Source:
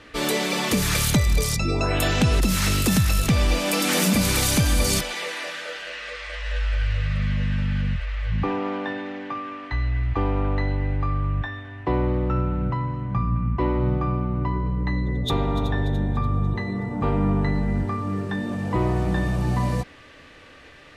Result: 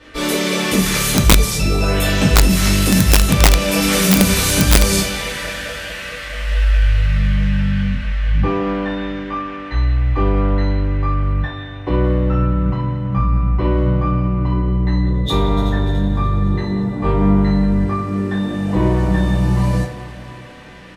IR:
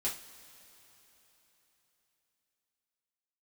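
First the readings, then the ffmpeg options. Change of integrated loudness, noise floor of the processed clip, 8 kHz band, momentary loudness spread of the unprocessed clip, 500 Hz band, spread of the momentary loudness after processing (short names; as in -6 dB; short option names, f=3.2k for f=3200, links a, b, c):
+7.0 dB, -31 dBFS, +7.0 dB, 10 LU, +6.0 dB, 12 LU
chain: -filter_complex "[0:a]asplit=2[a][b];[b]adelay=170,highpass=300,lowpass=3.4k,asoftclip=type=hard:threshold=-19.5dB,volume=-11dB[c];[a][c]amix=inputs=2:normalize=0[d];[1:a]atrim=start_sample=2205,asetrate=33075,aresample=44100[e];[d][e]afir=irnorm=-1:irlink=0,aeval=exprs='(mod(1.5*val(0)+1,2)-1)/1.5':c=same"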